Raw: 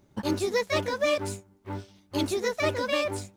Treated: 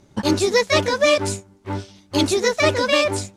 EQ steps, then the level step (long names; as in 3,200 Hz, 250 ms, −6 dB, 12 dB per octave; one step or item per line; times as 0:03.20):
low-pass filter 7,600 Hz 12 dB per octave
high-shelf EQ 5,200 Hz +9 dB
+8.5 dB